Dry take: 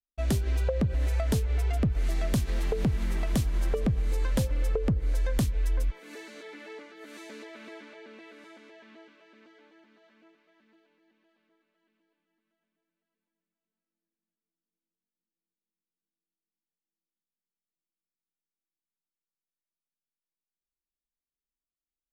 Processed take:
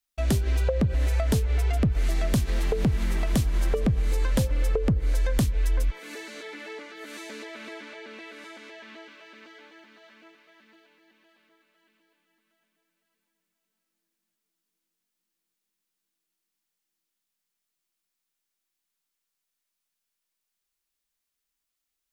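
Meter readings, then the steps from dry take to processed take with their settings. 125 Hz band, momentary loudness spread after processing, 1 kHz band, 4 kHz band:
+3.0 dB, 17 LU, +3.5 dB, +4.5 dB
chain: mismatched tape noise reduction encoder only; gain +3 dB

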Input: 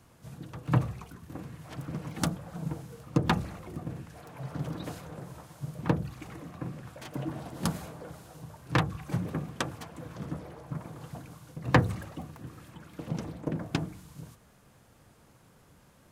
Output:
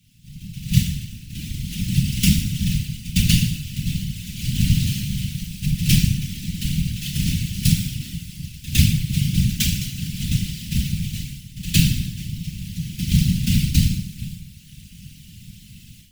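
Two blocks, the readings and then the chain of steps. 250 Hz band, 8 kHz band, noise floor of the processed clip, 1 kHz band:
+11.0 dB, +20.0 dB, -44 dBFS, under -20 dB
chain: half-waves squared off; HPF 130 Hz; FDN reverb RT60 0.94 s, low-frequency decay 1×, high-frequency decay 0.8×, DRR -4.5 dB; whisperiser; elliptic band-stop 170–2800 Hz, stop band 70 dB; pre-echo 0.109 s -18 dB; AGC gain up to 12.5 dB; gain -1 dB

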